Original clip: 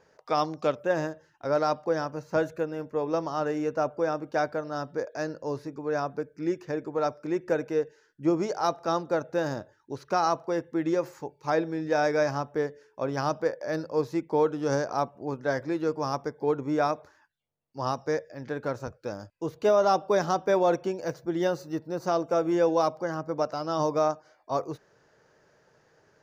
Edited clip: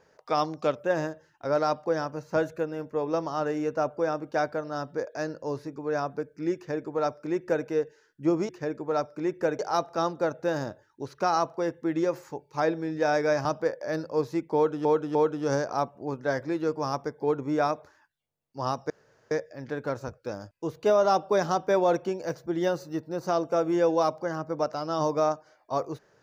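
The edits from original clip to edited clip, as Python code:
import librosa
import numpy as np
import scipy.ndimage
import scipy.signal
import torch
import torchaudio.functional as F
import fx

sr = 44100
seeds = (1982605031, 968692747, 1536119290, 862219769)

y = fx.edit(x, sr, fx.duplicate(start_s=6.56, length_s=1.1, to_s=8.49),
    fx.cut(start_s=12.35, length_s=0.9),
    fx.repeat(start_s=14.35, length_s=0.3, count=3),
    fx.insert_room_tone(at_s=18.1, length_s=0.41), tone=tone)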